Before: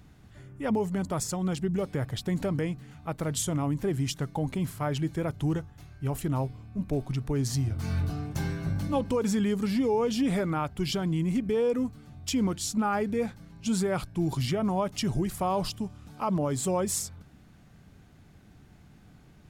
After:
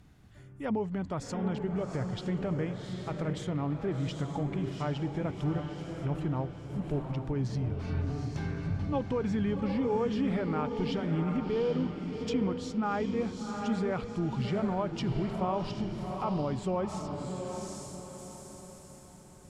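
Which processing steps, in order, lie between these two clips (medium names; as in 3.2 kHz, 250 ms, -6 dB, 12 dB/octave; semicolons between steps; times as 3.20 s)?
echo that smears into a reverb 747 ms, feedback 41%, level -5 dB; low-pass that closes with the level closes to 3 kHz, closed at -25 dBFS; trim -4 dB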